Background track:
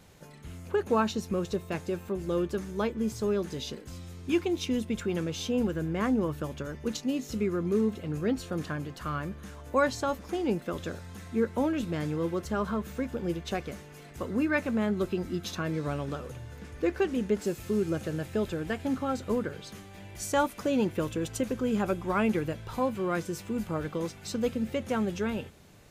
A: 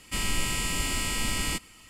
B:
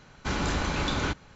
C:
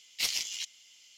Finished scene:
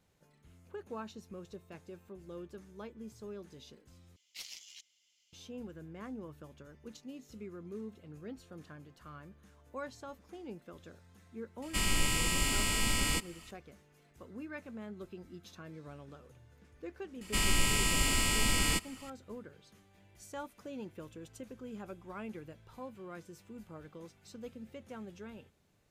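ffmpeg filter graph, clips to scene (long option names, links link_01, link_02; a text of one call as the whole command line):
ffmpeg -i bed.wav -i cue0.wav -i cue1.wav -i cue2.wav -filter_complex "[1:a]asplit=2[link_01][link_02];[0:a]volume=-17dB,asplit=2[link_03][link_04];[link_03]atrim=end=4.164[link_05];[3:a]atrim=end=1.17,asetpts=PTS-STARTPTS,volume=-16dB[link_06];[link_04]atrim=start=5.326[link_07];[link_01]atrim=end=1.89,asetpts=PTS-STARTPTS,volume=-2dB,afade=type=in:duration=0.004:curve=hsin,afade=type=out:start_time=1.886:duration=0.004:curve=hsin,adelay=512442S[link_08];[link_02]atrim=end=1.89,asetpts=PTS-STARTPTS,volume=-0.5dB,afade=type=in:duration=0.004:curve=hsin,afade=type=out:start_time=1.886:duration=0.004:curve=hsin,adelay=17210[link_09];[link_05][link_06]acrossfade=duration=0.004:curve1=hsin:curve2=hsin[link_10];[link_10][link_07]acrossfade=duration=0.004:curve1=hsin:curve2=hsin[link_11];[link_11][link_08][link_09]amix=inputs=3:normalize=0" out.wav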